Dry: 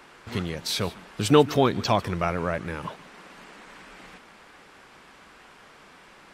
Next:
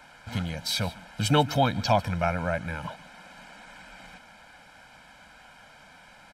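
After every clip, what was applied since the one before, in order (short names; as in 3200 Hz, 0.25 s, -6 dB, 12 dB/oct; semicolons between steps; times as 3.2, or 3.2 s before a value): comb 1.3 ms, depth 98%; gain -3.5 dB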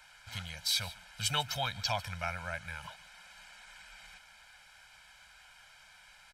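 passive tone stack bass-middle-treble 10-0-10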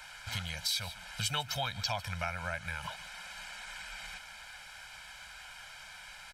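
compressor 2.5:1, threshold -44 dBFS, peak gain reduction 11.5 dB; gain +8.5 dB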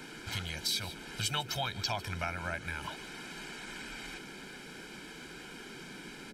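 band noise 140–440 Hz -51 dBFS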